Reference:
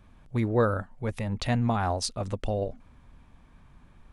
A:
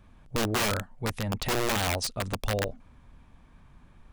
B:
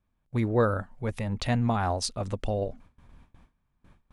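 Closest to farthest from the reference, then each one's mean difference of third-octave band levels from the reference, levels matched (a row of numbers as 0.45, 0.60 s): B, A; 1.0, 9.0 dB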